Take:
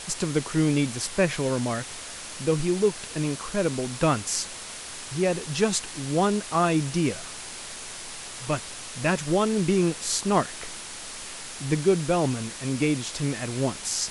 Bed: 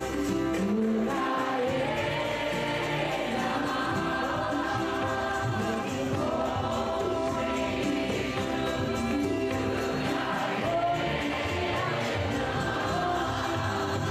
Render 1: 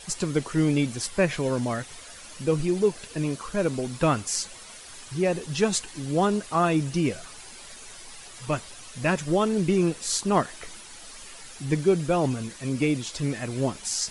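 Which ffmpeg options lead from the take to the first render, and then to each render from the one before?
-af "afftdn=nr=10:nf=-39"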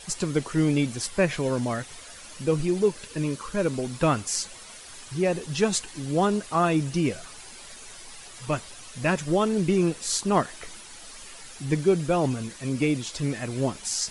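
-filter_complex "[0:a]asettb=1/sr,asplit=3[a][b][c];[a]atrim=end=2.884[d];[b]atrim=start=2.88:end=3.74,asetpts=PTS-STARTPTS,afade=t=in:d=0.004:c=qsin,afade=t=out:st=0.856:d=0.004:c=qsin,asuperstop=centerf=710:order=4:qfactor=5.2[e];[c]atrim=start=3.736[f];[d][e]acrossfade=d=0.004:c1=hsin:c2=qsin[g];[g][f]acrossfade=d=0.004:c1=qsin:c2=hsin"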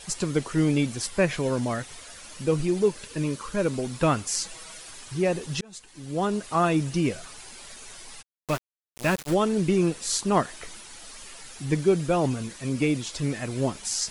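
-filter_complex "[0:a]asettb=1/sr,asplit=3[a][b][c];[a]atrim=end=4.414[d];[b]atrim=start=4.41:end=4.91,asetpts=PTS-STARTPTS,afade=t=in:d=0.004:c=qsin,afade=t=out:st=0.496:d=0.004:c=qsin,aecho=1:1:6.2:0.65,atrim=end_sample=22050[e];[c]atrim=start=4.906[f];[d][e]acrossfade=d=0.004:c1=hsin:c2=qsin[g];[g][f]acrossfade=d=0.004:c1=qsin:c2=hsin,asplit=3[h][i][j];[h]afade=t=out:st=8.21:d=0.02[k];[i]aeval=exprs='val(0)*gte(abs(val(0)),0.0355)':c=same,afade=t=in:st=8.21:d=0.02,afade=t=out:st=9.33:d=0.02[l];[j]afade=t=in:st=9.33:d=0.02[m];[k][l][m]amix=inputs=3:normalize=0,asplit=2[n][o];[n]atrim=end=5.61,asetpts=PTS-STARTPTS,afade=t=out:st=5.606:d=0.004:c=hsin[p];[o]atrim=start=5.61,asetpts=PTS-STARTPTS,afade=t=in:d=0.93[q];[p][q]concat=n=2:v=0:a=1"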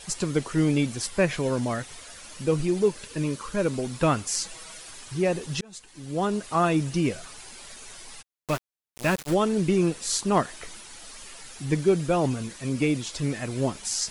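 -af "asoftclip=type=hard:threshold=-11.5dB"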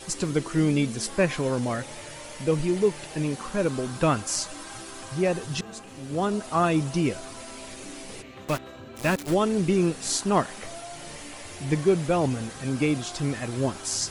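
-filter_complex "[1:a]volume=-14dB[a];[0:a][a]amix=inputs=2:normalize=0"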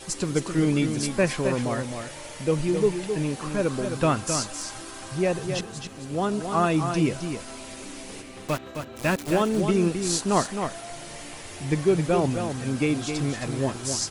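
-af "aecho=1:1:264:0.447"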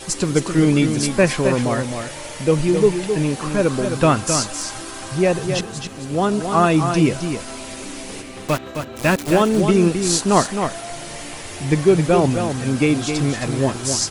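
-af "volume=7dB"

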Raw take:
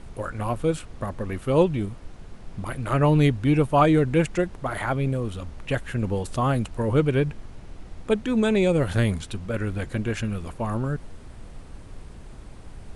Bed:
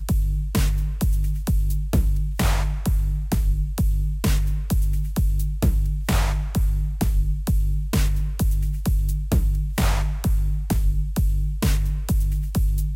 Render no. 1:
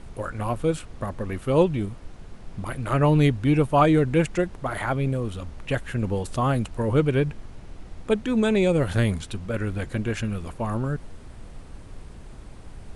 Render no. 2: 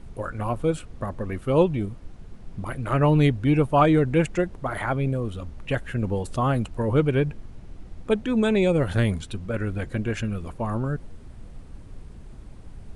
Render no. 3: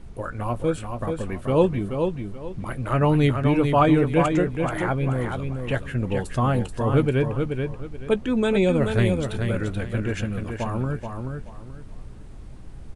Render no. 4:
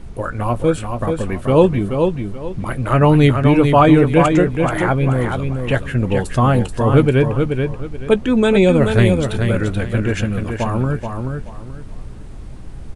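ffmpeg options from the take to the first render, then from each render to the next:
-af anull
-af "afftdn=nr=6:nf=-43"
-filter_complex "[0:a]asplit=2[a][b];[b]adelay=16,volume=-14dB[c];[a][c]amix=inputs=2:normalize=0,aecho=1:1:431|862|1293|1724:0.531|0.143|0.0387|0.0104"
-af "volume=7.5dB,alimiter=limit=-1dB:level=0:latency=1"

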